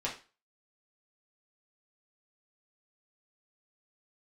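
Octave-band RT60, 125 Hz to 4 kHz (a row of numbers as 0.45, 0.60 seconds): 0.30, 0.30, 0.30, 0.35, 0.35, 0.30 seconds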